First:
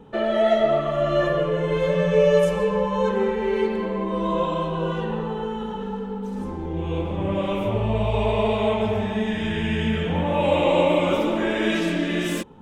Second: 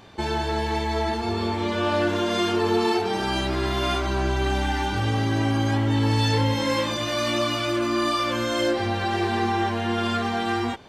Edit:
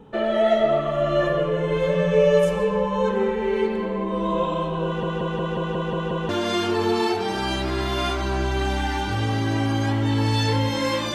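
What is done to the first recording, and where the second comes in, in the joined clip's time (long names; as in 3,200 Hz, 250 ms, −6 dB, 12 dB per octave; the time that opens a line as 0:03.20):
first
0:04.85: stutter in place 0.18 s, 8 plays
0:06.29: continue with second from 0:02.14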